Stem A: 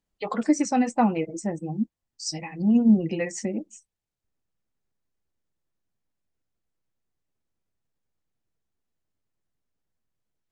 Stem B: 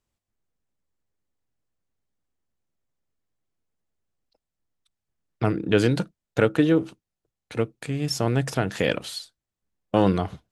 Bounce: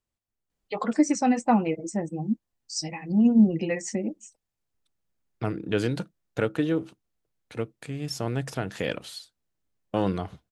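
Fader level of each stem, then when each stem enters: 0.0 dB, -6.0 dB; 0.50 s, 0.00 s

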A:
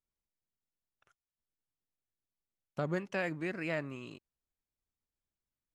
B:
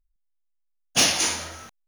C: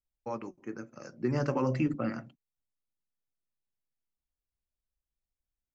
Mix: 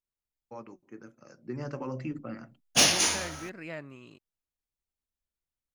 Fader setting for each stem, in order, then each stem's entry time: -4.5 dB, -2.0 dB, -7.0 dB; 0.00 s, 1.80 s, 0.25 s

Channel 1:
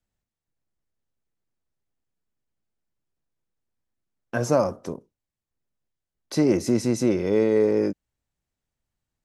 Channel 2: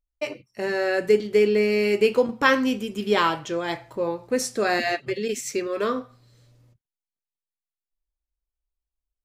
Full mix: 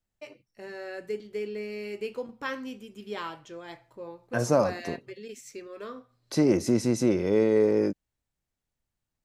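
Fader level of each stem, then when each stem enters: -2.0 dB, -15.0 dB; 0.00 s, 0.00 s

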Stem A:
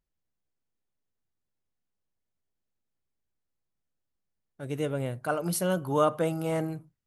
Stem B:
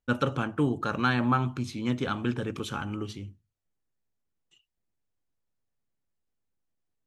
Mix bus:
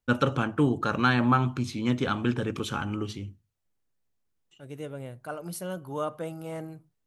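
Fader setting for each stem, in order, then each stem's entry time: -7.5 dB, +2.5 dB; 0.00 s, 0.00 s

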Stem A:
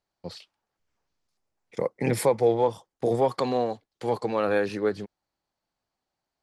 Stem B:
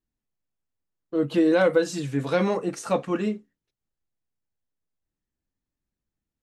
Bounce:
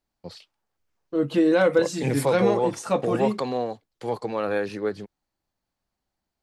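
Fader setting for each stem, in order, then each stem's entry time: -1.5 dB, +0.5 dB; 0.00 s, 0.00 s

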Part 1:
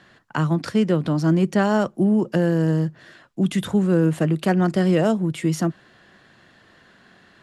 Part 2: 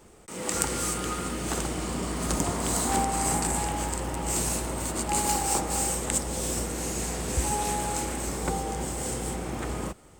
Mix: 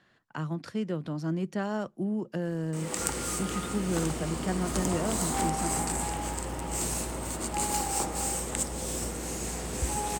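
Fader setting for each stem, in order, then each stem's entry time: -12.5 dB, -3.5 dB; 0.00 s, 2.45 s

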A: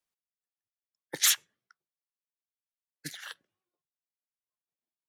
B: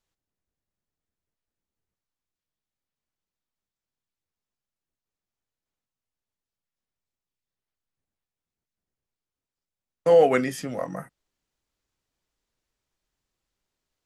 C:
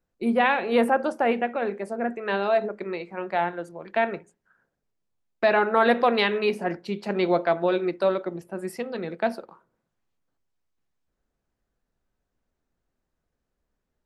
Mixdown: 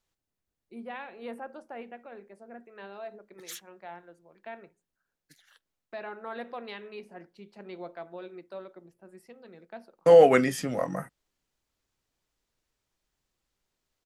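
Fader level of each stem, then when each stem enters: -19.0 dB, +1.0 dB, -19.0 dB; 2.25 s, 0.00 s, 0.50 s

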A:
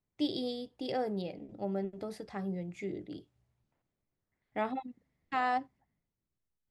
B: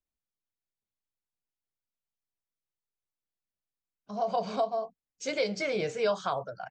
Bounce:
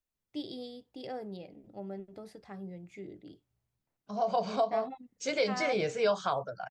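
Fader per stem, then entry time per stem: -6.5 dB, 0.0 dB; 0.15 s, 0.00 s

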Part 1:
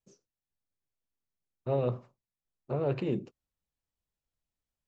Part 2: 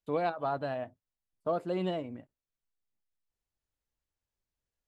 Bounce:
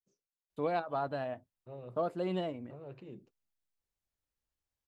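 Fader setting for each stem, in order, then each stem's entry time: -18.0 dB, -2.0 dB; 0.00 s, 0.50 s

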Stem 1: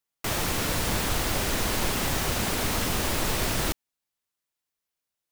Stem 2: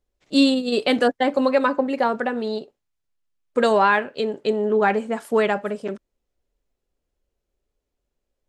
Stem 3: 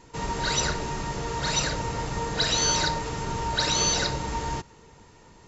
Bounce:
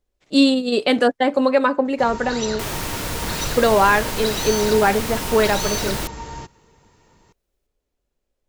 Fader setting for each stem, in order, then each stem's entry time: 0.0 dB, +2.0 dB, -3.5 dB; 2.35 s, 0.00 s, 1.85 s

